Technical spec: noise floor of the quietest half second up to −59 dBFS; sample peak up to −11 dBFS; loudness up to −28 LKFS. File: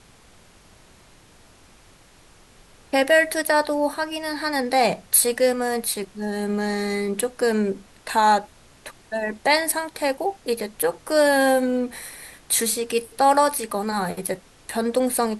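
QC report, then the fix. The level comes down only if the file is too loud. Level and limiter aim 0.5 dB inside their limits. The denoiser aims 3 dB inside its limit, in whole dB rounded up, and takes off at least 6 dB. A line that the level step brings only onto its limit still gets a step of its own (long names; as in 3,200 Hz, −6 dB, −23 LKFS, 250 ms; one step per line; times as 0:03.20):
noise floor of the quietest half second −52 dBFS: out of spec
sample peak −3.5 dBFS: out of spec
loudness −22.0 LKFS: out of spec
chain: broadband denoise 6 dB, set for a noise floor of −52 dBFS
level −6.5 dB
brickwall limiter −11.5 dBFS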